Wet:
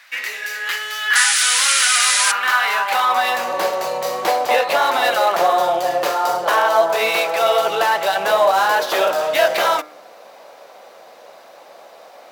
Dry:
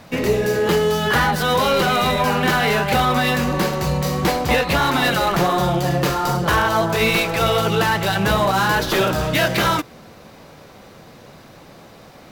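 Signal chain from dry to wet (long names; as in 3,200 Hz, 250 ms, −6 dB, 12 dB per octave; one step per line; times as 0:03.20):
high-pass filter sweep 1,800 Hz → 620 Hz, 0:01.86–0:03.66
sound drawn into the spectrogram noise, 0:01.15–0:02.32, 1,200–11,000 Hz −16 dBFS
hum removal 151.7 Hz, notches 15
level −1 dB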